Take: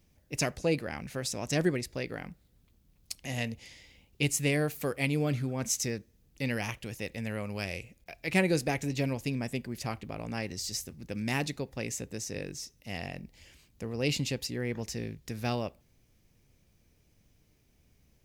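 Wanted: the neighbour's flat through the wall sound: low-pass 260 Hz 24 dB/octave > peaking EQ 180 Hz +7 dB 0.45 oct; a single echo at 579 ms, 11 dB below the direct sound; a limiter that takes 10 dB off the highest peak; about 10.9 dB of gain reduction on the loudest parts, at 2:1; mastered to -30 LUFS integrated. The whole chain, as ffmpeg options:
-af "acompressor=threshold=0.00708:ratio=2,alimiter=level_in=2:limit=0.0631:level=0:latency=1,volume=0.501,lowpass=f=260:w=0.5412,lowpass=f=260:w=1.3066,equalizer=f=180:t=o:w=0.45:g=7,aecho=1:1:579:0.282,volume=5.31"

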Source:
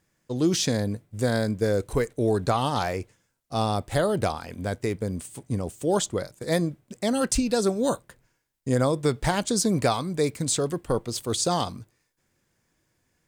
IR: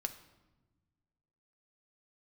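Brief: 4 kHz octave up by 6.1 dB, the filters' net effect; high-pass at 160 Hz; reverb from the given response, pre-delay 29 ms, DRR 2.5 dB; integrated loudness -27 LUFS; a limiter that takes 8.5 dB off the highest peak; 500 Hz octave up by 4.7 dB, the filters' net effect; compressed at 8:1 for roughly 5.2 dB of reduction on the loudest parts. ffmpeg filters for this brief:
-filter_complex "[0:a]highpass=160,equalizer=f=500:t=o:g=5.5,equalizer=f=4000:t=o:g=7.5,acompressor=threshold=0.1:ratio=8,alimiter=limit=0.133:level=0:latency=1,asplit=2[s0][s1];[1:a]atrim=start_sample=2205,adelay=29[s2];[s1][s2]afir=irnorm=-1:irlink=0,volume=0.794[s3];[s0][s3]amix=inputs=2:normalize=0"

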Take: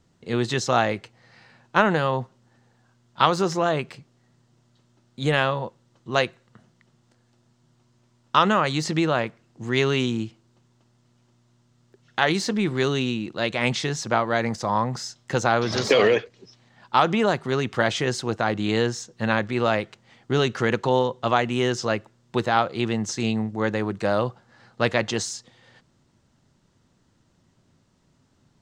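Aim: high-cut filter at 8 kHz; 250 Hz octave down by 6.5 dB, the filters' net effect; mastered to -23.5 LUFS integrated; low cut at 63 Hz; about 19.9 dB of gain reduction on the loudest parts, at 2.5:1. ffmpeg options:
-af "highpass=63,lowpass=8000,equalizer=f=250:t=o:g=-9,acompressor=threshold=0.00562:ratio=2.5,volume=7.94"

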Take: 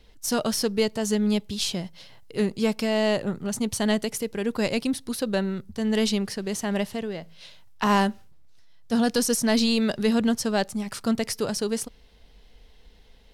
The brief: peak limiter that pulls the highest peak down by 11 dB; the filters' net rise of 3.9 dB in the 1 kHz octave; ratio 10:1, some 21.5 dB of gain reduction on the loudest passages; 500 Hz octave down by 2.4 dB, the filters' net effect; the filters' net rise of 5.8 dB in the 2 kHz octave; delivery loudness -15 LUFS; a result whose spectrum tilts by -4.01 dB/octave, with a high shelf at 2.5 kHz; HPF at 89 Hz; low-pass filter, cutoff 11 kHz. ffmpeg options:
-af "highpass=89,lowpass=11000,equalizer=f=500:t=o:g=-4.5,equalizer=f=1000:t=o:g=5,equalizer=f=2000:t=o:g=8,highshelf=f=2500:g=-5,acompressor=threshold=0.0158:ratio=10,volume=23.7,alimiter=limit=0.531:level=0:latency=1"

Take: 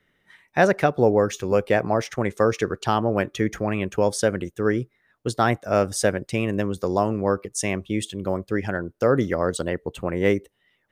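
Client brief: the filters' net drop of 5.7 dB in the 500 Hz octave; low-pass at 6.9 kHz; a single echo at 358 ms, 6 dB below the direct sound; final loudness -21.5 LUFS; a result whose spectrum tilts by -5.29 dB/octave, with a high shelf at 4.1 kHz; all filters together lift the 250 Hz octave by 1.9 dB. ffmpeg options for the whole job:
-af "lowpass=6900,equalizer=f=250:t=o:g=5,equalizer=f=500:t=o:g=-8.5,highshelf=f=4100:g=5.5,aecho=1:1:358:0.501,volume=1.33"

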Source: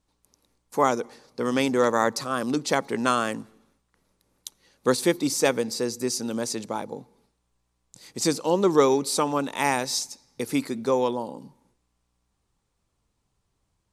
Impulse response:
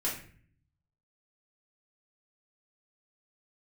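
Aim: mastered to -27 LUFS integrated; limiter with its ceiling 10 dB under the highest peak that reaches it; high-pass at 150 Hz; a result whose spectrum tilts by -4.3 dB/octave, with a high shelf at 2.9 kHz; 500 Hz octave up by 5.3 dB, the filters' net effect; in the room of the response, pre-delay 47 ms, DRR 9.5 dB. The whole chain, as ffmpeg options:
-filter_complex "[0:a]highpass=150,equalizer=f=500:t=o:g=6.5,highshelf=f=2900:g=-8,alimiter=limit=0.237:level=0:latency=1,asplit=2[s0][s1];[1:a]atrim=start_sample=2205,adelay=47[s2];[s1][s2]afir=irnorm=-1:irlink=0,volume=0.188[s3];[s0][s3]amix=inputs=2:normalize=0,volume=0.75"

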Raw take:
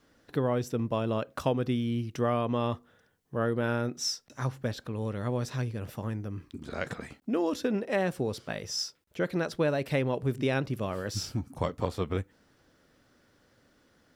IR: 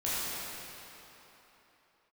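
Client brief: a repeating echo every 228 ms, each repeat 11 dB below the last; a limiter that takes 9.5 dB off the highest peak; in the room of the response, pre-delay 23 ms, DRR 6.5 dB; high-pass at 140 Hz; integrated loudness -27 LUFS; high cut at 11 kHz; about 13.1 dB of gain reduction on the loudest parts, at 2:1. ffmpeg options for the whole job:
-filter_complex "[0:a]highpass=140,lowpass=11000,acompressor=threshold=0.00398:ratio=2,alimiter=level_in=2.99:limit=0.0631:level=0:latency=1,volume=0.335,aecho=1:1:228|456|684:0.282|0.0789|0.0221,asplit=2[s0][s1];[1:a]atrim=start_sample=2205,adelay=23[s2];[s1][s2]afir=irnorm=-1:irlink=0,volume=0.168[s3];[s0][s3]amix=inputs=2:normalize=0,volume=7.5"

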